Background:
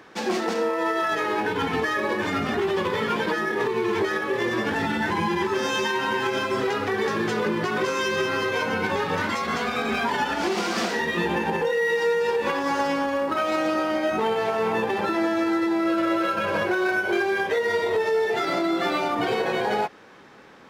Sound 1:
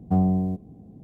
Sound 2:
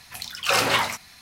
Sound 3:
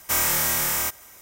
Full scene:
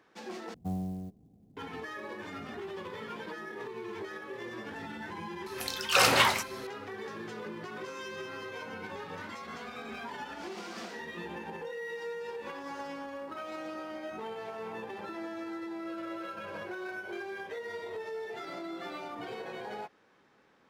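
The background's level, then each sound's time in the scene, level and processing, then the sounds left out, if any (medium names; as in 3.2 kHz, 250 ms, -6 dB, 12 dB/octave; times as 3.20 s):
background -16.5 dB
0.54 s: replace with 1 -14 dB + sampling jitter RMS 0.024 ms
5.46 s: add 2 -2 dB
not used: 3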